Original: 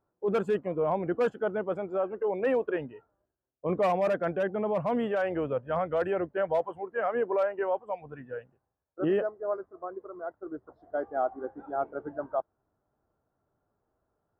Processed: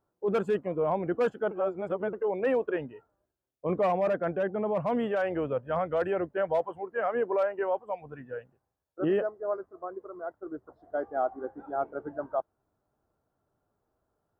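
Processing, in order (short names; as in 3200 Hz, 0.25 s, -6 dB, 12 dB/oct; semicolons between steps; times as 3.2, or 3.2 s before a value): 1.51–2.13 reverse; 3.82–4.77 high shelf 3500 Hz -9 dB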